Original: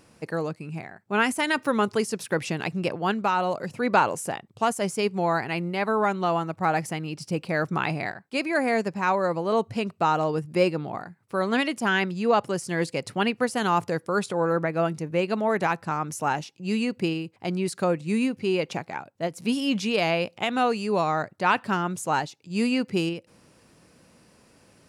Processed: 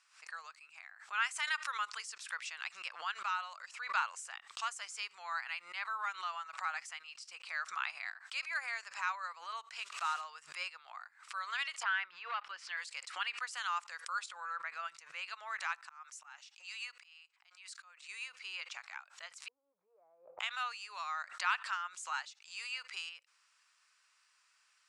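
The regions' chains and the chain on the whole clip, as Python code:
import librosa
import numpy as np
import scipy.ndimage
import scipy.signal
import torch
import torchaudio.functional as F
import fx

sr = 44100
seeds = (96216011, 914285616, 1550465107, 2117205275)

y = fx.chain(x, sr, fx.block_float(bits=5),
    fx.sustainer(db_per_s=40.0), at=(9.79, 10.22))
y = fx.chain(y, sr, fx.leveller(passes=1),
    fx.air_absorb(metres=360.0),
    fx.band_squash(depth_pct=70), at=(11.83, 12.77))
y = fx.chain(y, sr, fx.highpass(hz=540.0, slope=24),
    fx.auto_swell(attack_ms=402.0), at=(15.83, 18.09))
y = fx.chain(y, sr, fx.law_mismatch(coded='mu'),
    fx.cheby2_lowpass(hz=2900.0, order=4, stop_db=80), at=(19.48, 20.4))
y = scipy.signal.sosfilt(scipy.signal.ellip(3, 1.0, 60, [1200.0, 8100.0], 'bandpass', fs=sr, output='sos'), y)
y = fx.pre_swell(y, sr, db_per_s=130.0)
y = F.gain(torch.from_numpy(y), -8.0).numpy()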